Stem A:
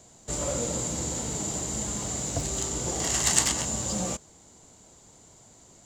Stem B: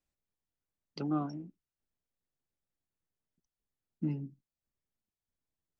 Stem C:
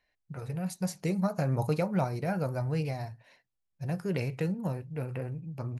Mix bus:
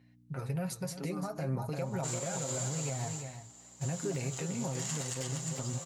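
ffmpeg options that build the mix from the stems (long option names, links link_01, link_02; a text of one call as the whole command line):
ffmpeg -i stem1.wav -i stem2.wav -i stem3.wav -filter_complex "[0:a]highpass=610,adelay=1750,volume=-4dB,afade=type=out:start_time=2.77:duration=0.35:silence=0.398107,asplit=2[link_01][link_02];[link_02]volume=-12dB[link_03];[1:a]volume=-7dB[link_04];[2:a]aeval=exprs='val(0)+0.00141*(sin(2*PI*60*n/s)+sin(2*PI*2*60*n/s)/2+sin(2*PI*3*60*n/s)/3+sin(2*PI*4*60*n/s)/4+sin(2*PI*5*60*n/s)/5)':channel_layout=same,volume=1dB,asplit=3[link_05][link_06][link_07];[link_06]volume=-14dB[link_08];[link_07]apad=whole_len=335454[link_09];[link_01][link_09]sidechaingate=range=-33dB:threshold=-48dB:ratio=16:detection=peak[link_10];[link_04][link_05]amix=inputs=2:normalize=0,highpass=130,alimiter=level_in=2.5dB:limit=-24dB:level=0:latency=1:release=159,volume=-2.5dB,volume=0dB[link_11];[link_03][link_08]amix=inputs=2:normalize=0,aecho=0:1:344:1[link_12];[link_10][link_11][link_12]amix=inputs=3:normalize=0,aecho=1:1:7.5:0.54,alimiter=level_in=1.5dB:limit=-24dB:level=0:latency=1:release=130,volume=-1.5dB" out.wav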